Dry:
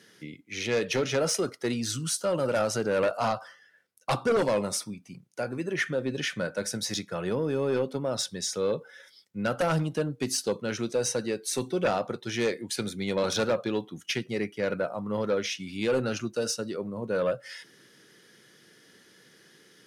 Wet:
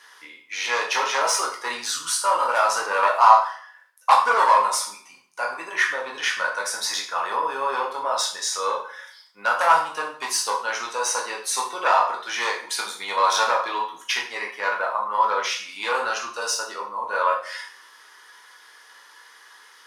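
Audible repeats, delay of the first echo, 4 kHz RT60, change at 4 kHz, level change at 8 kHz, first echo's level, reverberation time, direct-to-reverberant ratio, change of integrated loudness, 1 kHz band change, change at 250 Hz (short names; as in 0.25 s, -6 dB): none, none, 0.45 s, +6.5 dB, +6.5 dB, none, 0.50 s, -1.5 dB, +6.5 dB, +16.5 dB, -15.5 dB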